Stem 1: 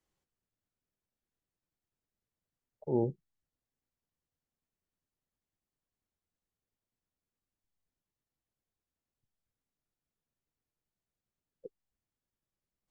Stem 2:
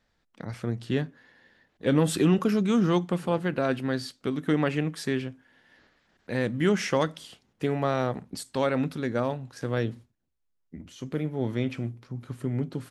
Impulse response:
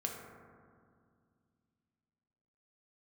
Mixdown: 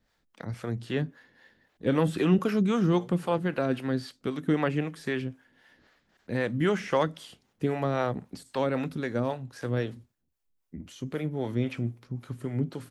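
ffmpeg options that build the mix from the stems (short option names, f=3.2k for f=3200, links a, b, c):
-filter_complex "[0:a]volume=-2dB[a];[1:a]volume=2.5dB,asplit=2[b][c];[c]apad=whole_len=568922[d];[a][d]sidechaincompress=threshold=-26dB:ratio=8:attack=16:release=390[e];[e][b]amix=inputs=2:normalize=0,acrossover=split=430[f][g];[f]aeval=exprs='val(0)*(1-0.7/2+0.7/2*cos(2*PI*3.8*n/s))':c=same[h];[g]aeval=exprs='val(0)*(1-0.7/2-0.7/2*cos(2*PI*3.8*n/s))':c=same[i];[h][i]amix=inputs=2:normalize=0,acrossover=split=3300[j][k];[k]acompressor=threshold=-48dB:ratio=4:attack=1:release=60[l];[j][l]amix=inputs=2:normalize=0,highshelf=f=10k:g=5.5"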